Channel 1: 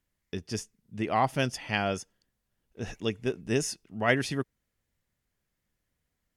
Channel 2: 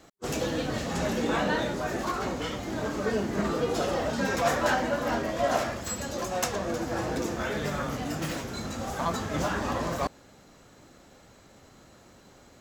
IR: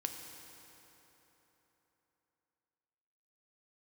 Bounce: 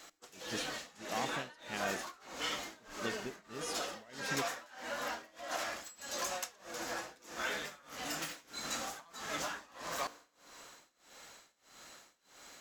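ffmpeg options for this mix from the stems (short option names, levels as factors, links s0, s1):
-filter_complex "[0:a]acompressor=threshold=0.0398:ratio=6,volume=0.531[s0];[1:a]acompressor=threshold=0.0224:ratio=6,tiltshelf=f=670:g=-9.5,volume=0.501,asplit=2[s1][s2];[s2]volume=0.562[s3];[2:a]atrim=start_sample=2205[s4];[s3][s4]afir=irnorm=-1:irlink=0[s5];[s0][s1][s5]amix=inputs=3:normalize=0,equalizer=f=93:w=2.1:g=-12,tremolo=f=1.6:d=0.95"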